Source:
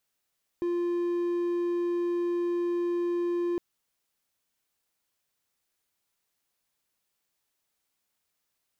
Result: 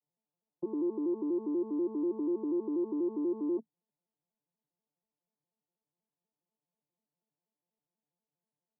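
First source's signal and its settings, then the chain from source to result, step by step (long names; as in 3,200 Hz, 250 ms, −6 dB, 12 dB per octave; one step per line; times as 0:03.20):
tone triangle 348 Hz −23.5 dBFS 2.96 s
vocoder with an arpeggio as carrier minor triad, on D3, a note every 81 ms
elliptic low-pass filter 980 Hz, stop band 50 dB
brickwall limiter −26 dBFS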